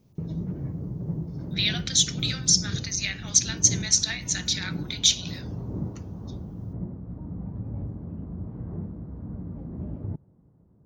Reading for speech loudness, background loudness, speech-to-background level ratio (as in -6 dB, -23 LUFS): -23.0 LUFS, -35.0 LUFS, 12.0 dB